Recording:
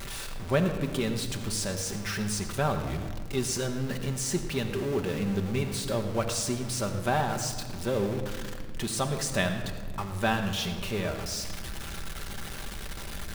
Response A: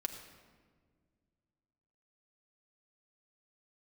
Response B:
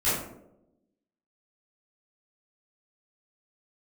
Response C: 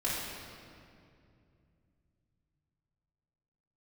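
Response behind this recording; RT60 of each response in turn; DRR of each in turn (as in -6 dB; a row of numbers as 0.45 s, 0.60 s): A; 1.7 s, 0.85 s, 2.5 s; 3.5 dB, -13.5 dB, -9.0 dB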